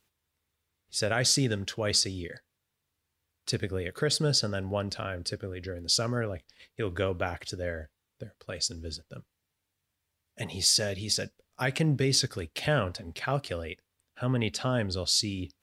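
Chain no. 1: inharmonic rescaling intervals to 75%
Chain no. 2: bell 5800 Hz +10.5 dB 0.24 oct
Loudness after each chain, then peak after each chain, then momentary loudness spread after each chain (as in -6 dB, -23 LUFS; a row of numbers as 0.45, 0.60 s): -30.0, -26.5 LUFS; -10.0, -7.5 dBFS; 16, 17 LU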